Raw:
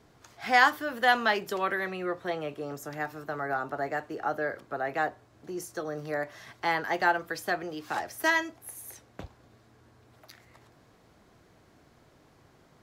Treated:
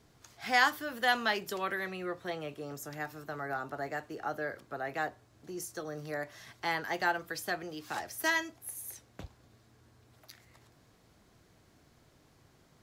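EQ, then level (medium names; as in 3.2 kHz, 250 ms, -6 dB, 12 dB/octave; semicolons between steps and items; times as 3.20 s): bass shelf 250 Hz +6.5 dB; treble shelf 2.5 kHz +9 dB; -7.5 dB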